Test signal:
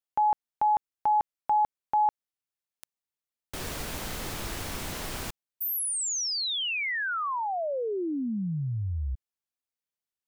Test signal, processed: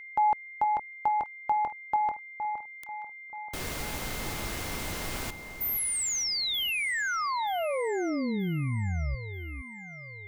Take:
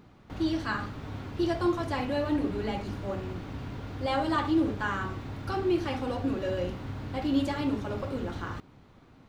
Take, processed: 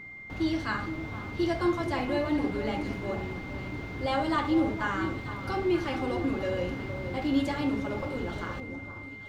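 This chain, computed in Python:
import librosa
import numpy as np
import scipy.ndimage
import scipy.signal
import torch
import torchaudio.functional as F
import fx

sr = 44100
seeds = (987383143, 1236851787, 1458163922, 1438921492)

y = x + 10.0 ** (-42.0 / 20.0) * np.sin(2.0 * np.pi * 2100.0 * np.arange(len(x)) / sr)
y = fx.echo_alternate(y, sr, ms=465, hz=1200.0, feedback_pct=60, wet_db=-9.0)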